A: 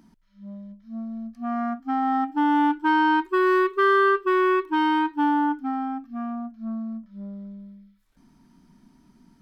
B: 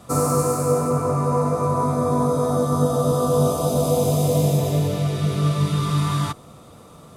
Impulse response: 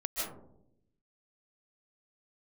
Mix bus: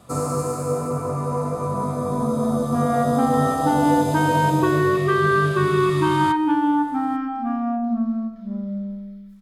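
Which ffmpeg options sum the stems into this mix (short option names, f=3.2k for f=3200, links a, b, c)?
-filter_complex "[0:a]acompressor=threshold=-27dB:ratio=3,adelay=1300,volume=2.5dB,asplit=2[a][b];[b]volume=-3.5dB[c];[1:a]bandreject=f=5.8k:w=11,volume=-4dB[d];[2:a]atrim=start_sample=2205[e];[c][e]afir=irnorm=-1:irlink=0[f];[a][d][f]amix=inputs=3:normalize=0,acrossover=split=9600[g][h];[h]acompressor=threshold=-48dB:ratio=4:attack=1:release=60[i];[g][i]amix=inputs=2:normalize=0"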